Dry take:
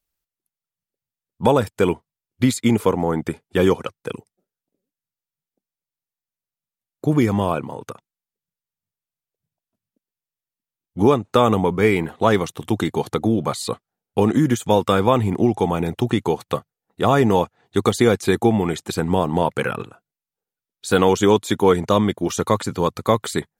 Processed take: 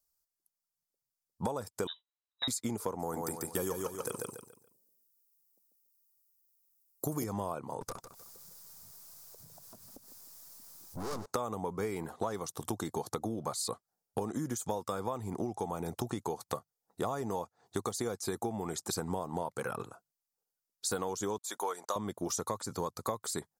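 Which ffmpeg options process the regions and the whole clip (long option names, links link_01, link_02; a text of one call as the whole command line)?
ffmpeg -i in.wav -filter_complex "[0:a]asettb=1/sr,asplit=3[link_01][link_02][link_03];[link_01]atrim=end=1.874[link_04];[link_02]atrim=start=1.87:end=2.48,asetpts=PTS-STARTPTS,afade=type=in:duration=0.004:curve=qsin,afade=type=out:start_time=0.606:duration=0.004:curve=qsin,lowshelf=frequency=500:gain=-6.5,lowpass=frequency=3400:width_type=q:width=0.5098,lowpass=frequency=3400:width_type=q:width=0.6013,lowpass=frequency=3400:width_type=q:width=0.9,lowpass=frequency=3400:width_type=q:width=2.563,afreqshift=-4000[link_05];[link_03]atrim=start=2.476[link_06];[link_04][link_05]acrossfade=duration=0.004:curve1=hsin:curve2=qsin[link_07];[link_07][link_06]acrossfade=duration=0.004:curve1=qsin:curve2=hsin,asettb=1/sr,asplit=3[link_08][link_09][link_10];[link_08]atrim=end=2.994[link_11];[link_09]atrim=start=2.99:end=7.24,asetpts=PTS-STARTPTS,afade=type=in:duration=0.004:curve=qsin,afade=type=out:start_time=4.246:duration=0.004:curve=qsin,aemphasis=mode=production:type=50fm,bandreject=frequency=3500:width=17,aecho=1:1:142|284|426|568:0.562|0.174|0.054|0.0168,atrim=end_sample=187425[link_12];[link_10]atrim=start=7.236[link_13];[link_11][link_12]acrossfade=duration=0.004:curve1=hsin:curve2=qsin[link_14];[link_14][link_13]acrossfade=duration=0.004:curve1=qsin:curve2=hsin,asettb=1/sr,asplit=3[link_15][link_16][link_17];[link_15]atrim=end=7.814[link_18];[link_16]atrim=start=7.81:end=11.26,asetpts=PTS-STARTPTS,afade=type=in:duration=0.004:curve=qsin,afade=type=out:start_time=3.446:duration=0.004:curve=qsin,acompressor=mode=upward:threshold=-17dB:ratio=2.5:attack=3.2:release=140:knee=2.83:detection=peak,aeval=exprs='(tanh(31.6*val(0)+0.7)-tanh(0.7))/31.6':channel_layout=same,aecho=1:1:154|308|462|616:0.282|0.107|0.0407|0.0155,atrim=end_sample=152145[link_19];[link_17]atrim=start=11.256[link_20];[link_18][link_19]acrossfade=duration=0.004:curve1=hsin:curve2=qsin[link_21];[link_21][link_20]acrossfade=duration=0.004:curve1=qsin:curve2=hsin,asettb=1/sr,asplit=3[link_22][link_23][link_24];[link_22]atrim=end=21.384[link_25];[link_23]atrim=start=21.38:end=21.96,asetpts=PTS-STARTPTS,afade=type=in:duration=0.004:curve=qsin,afade=type=out:start_time=0.576:duration=0.004:curve=qsin,highpass=700,bandreject=frequency=5300:width=17,agate=range=-25dB:threshold=-41dB:ratio=16:release=100:detection=peak[link_26];[link_24]atrim=start=21.956[link_27];[link_25][link_26]acrossfade=duration=0.004:curve1=hsin:curve2=qsin[link_28];[link_28][link_27]acrossfade=duration=0.004:curve1=qsin:curve2=hsin,firequalizer=gain_entry='entry(270,0);entry(610,5);entry(1100,6);entry(1900,-3);entry(2900,-6);entry(4900,11)':delay=0.05:min_phase=1,acompressor=threshold=-23dB:ratio=10,volume=-8.5dB" out.wav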